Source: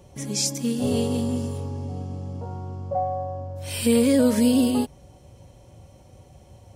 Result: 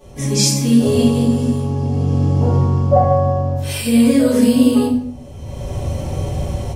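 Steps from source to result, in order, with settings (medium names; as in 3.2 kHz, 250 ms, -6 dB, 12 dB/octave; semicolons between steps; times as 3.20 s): simulated room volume 94 m³, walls mixed, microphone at 2.9 m; level rider gain up to 14 dB; trim -1 dB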